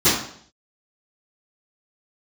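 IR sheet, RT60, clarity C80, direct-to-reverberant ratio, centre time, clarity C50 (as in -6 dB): 0.60 s, 7.0 dB, -22.0 dB, 48 ms, 3.0 dB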